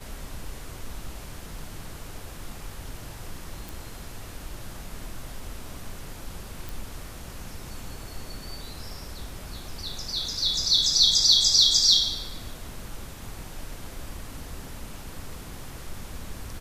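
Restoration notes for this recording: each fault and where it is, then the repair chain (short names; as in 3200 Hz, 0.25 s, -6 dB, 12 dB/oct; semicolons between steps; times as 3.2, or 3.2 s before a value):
3.69 pop
6.69 pop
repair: de-click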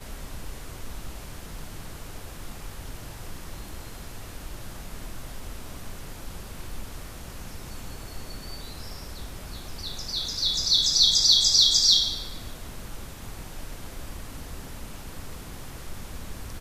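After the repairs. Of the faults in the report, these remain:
none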